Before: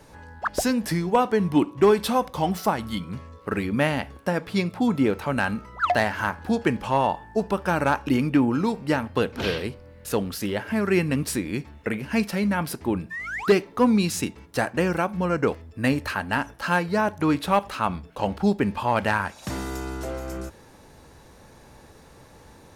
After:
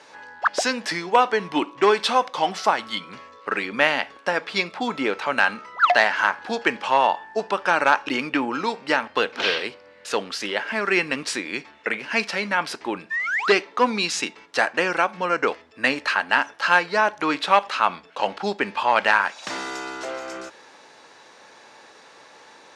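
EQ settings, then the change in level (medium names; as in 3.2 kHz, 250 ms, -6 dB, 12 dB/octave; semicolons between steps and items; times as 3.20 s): band-pass 330–7700 Hz; distance through air 70 m; tilt shelf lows -6.5 dB, about 770 Hz; +4.0 dB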